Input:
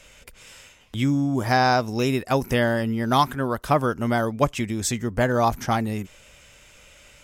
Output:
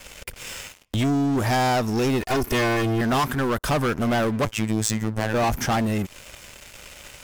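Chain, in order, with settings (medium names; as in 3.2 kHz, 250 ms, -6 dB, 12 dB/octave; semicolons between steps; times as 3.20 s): 2.21–3.01 s: comb filter that takes the minimum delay 2.8 ms; band-stop 3.9 kHz, Q 15; in parallel at +2 dB: compression 12:1, threshold -34 dBFS, peak gain reduction 20.5 dB; on the sum: waveshaping leveller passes 5; 4.45–5.34 s: robot voice 109 Hz; trim -13 dB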